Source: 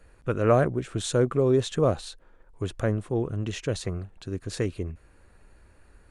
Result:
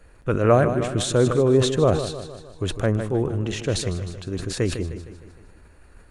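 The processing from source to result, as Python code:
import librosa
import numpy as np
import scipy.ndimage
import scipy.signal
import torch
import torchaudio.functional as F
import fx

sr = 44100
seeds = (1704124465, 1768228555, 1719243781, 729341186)

y = fx.echo_feedback(x, sr, ms=154, feedback_pct=53, wet_db=-11.0)
y = fx.sustainer(y, sr, db_per_s=74.0)
y = y * 10.0 ** (3.5 / 20.0)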